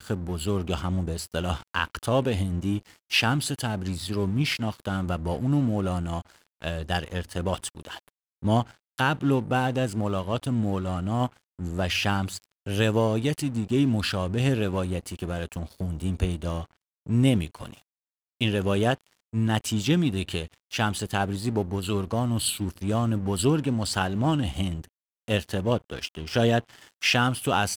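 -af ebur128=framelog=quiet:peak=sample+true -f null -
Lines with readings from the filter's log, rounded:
Integrated loudness:
  I:         -26.9 LUFS
  Threshold: -37.1 LUFS
Loudness range:
  LRA:         2.9 LU
  Threshold: -47.3 LUFS
  LRA low:   -29.0 LUFS
  LRA high:  -26.2 LUFS
Sample peak:
  Peak:       -8.4 dBFS
True peak:
  Peak:       -8.2 dBFS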